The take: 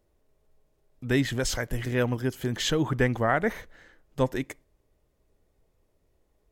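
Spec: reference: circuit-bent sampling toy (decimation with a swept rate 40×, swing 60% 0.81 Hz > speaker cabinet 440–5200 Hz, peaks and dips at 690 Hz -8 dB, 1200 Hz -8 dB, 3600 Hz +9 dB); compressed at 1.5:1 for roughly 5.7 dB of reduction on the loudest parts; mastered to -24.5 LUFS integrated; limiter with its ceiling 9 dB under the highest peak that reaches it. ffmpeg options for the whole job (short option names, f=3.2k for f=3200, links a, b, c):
-af "acompressor=threshold=-35dB:ratio=1.5,alimiter=limit=-24dB:level=0:latency=1,acrusher=samples=40:mix=1:aa=0.000001:lfo=1:lforange=24:lforate=0.81,highpass=440,equalizer=f=690:t=q:w=4:g=-8,equalizer=f=1.2k:t=q:w=4:g=-8,equalizer=f=3.6k:t=q:w=4:g=9,lowpass=f=5.2k:w=0.5412,lowpass=f=5.2k:w=1.3066,volume=16.5dB"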